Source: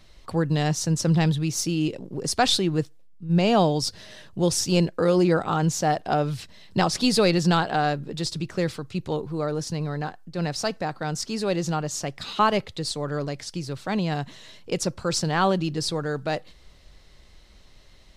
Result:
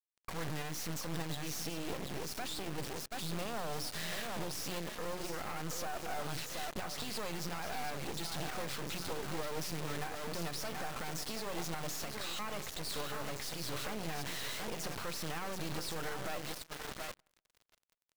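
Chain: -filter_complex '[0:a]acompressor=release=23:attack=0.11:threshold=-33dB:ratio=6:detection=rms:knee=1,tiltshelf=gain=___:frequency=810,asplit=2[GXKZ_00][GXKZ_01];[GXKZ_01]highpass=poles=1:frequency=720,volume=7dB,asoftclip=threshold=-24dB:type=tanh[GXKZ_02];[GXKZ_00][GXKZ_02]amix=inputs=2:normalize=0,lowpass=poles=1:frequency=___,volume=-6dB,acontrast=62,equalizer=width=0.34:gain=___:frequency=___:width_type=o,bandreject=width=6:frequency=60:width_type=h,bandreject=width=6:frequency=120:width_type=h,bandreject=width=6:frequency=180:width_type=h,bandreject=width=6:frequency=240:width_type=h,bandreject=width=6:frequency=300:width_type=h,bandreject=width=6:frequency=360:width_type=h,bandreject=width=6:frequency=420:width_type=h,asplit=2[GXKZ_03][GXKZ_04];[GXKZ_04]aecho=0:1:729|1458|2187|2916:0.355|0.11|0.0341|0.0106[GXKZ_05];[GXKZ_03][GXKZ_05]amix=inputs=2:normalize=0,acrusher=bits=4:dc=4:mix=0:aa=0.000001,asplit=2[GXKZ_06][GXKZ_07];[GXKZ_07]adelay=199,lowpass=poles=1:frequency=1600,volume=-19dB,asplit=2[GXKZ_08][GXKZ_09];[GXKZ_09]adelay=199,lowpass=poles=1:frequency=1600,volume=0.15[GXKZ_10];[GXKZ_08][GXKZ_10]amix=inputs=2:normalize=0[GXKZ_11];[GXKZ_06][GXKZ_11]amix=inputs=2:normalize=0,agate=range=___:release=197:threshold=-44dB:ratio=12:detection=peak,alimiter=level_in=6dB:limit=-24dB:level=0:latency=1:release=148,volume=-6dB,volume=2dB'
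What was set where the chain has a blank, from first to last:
-4.5, 1300, -12.5, 61, -20dB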